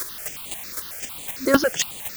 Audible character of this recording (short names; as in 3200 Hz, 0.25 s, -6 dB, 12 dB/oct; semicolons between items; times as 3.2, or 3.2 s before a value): a quantiser's noise floor 6-bit, dither triangular; chopped level 3.9 Hz, depth 60%, duty 10%; notches that jump at a steady rate 11 Hz 770–5400 Hz